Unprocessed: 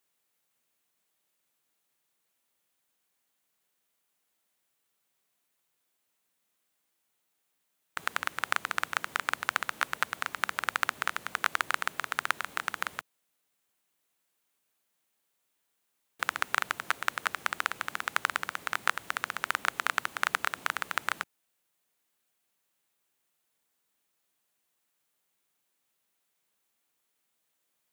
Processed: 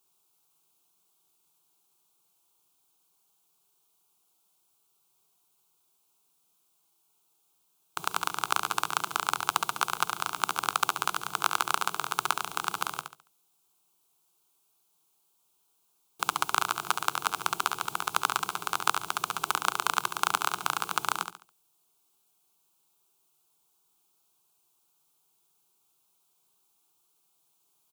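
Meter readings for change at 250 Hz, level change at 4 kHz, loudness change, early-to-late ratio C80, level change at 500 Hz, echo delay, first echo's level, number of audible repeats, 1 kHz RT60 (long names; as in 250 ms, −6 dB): +4.5 dB, +4.5 dB, +2.0 dB, no reverb audible, +3.0 dB, 70 ms, −7.0 dB, 3, no reverb audible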